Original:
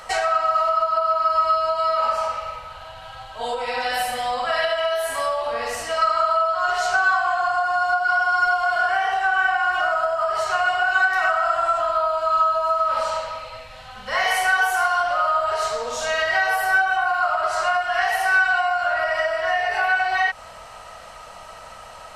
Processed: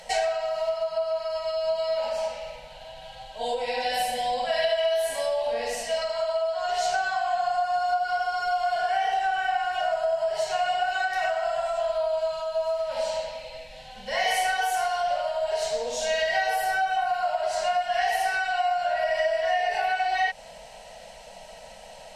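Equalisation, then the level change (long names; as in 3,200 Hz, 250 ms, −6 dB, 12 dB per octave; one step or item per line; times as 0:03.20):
high-shelf EQ 12,000 Hz −8.5 dB
phaser with its sweep stopped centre 330 Hz, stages 6
0.0 dB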